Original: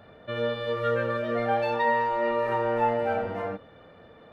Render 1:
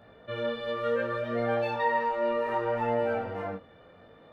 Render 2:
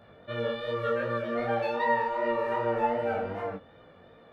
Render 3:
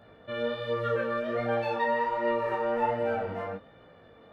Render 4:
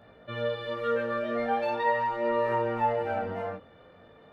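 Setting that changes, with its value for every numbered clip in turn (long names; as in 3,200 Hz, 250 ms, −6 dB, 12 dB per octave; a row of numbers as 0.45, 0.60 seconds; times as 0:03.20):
chorus effect, speed: 0.66, 2.6, 1.3, 0.41 Hertz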